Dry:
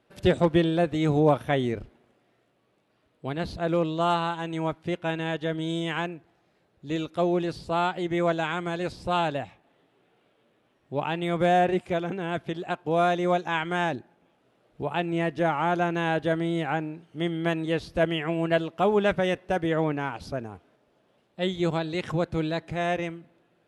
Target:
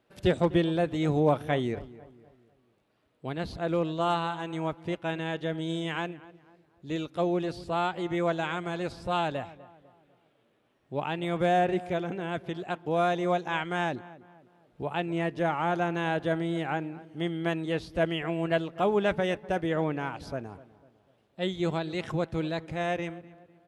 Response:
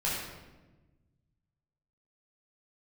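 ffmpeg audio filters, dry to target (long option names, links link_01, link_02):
-filter_complex "[0:a]asplit=2[link_01][link_02];[link_02]adelay=249,lowpass=frequency=1800:poles=1,volume=-18dB,asplit=2[link_03][link_04];[link_04]adelay=249,lowpass=frequency=1800:poles=1,volume=0.43,asplit=2[link_05][link_06];[link_06]adelay=249,lowpass=frequency=1800:poles=1,volume=0.43,asplit=2[link_07][link_08];[link_08]adelay=249,lowpass=frequency=1800:poles=1,volume=0.43[link_09];[link_01][link_03][link_05][link_07][link_09]amix=inputs=5:normalize=0,volume=-3dB"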